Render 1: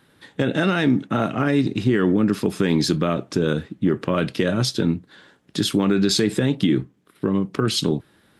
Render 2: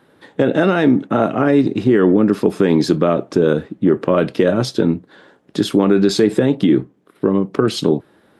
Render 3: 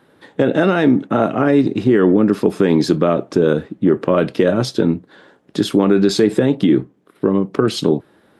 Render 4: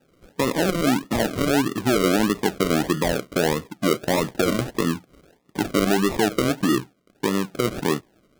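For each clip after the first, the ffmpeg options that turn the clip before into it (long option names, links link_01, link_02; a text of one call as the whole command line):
ffmpeg -i in.wav -af "equalizer=frequency=530:width=0.4:gain=12.5,volume=-3.5dB" out.wav
ffmpeg -i in.wav -af anull out.wav
ffmpeg -i in.wav -af "acrusher=samples=40:mix=1:aa=0.000001:lfo=1:lforange=24:lforate=1.6,volume=-7dB" out.wav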